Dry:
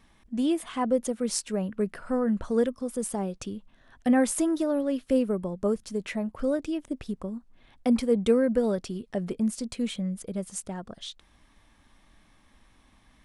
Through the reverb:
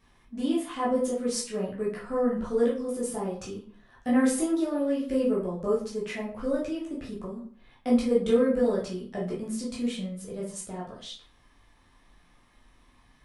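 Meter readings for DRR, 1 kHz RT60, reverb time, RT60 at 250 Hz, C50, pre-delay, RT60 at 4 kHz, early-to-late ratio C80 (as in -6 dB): -6.5 dB, 0.50 s, 0.50 s, 0.50 s, 5.5 dB, 10 ms, 0.35 s, 11.5 dB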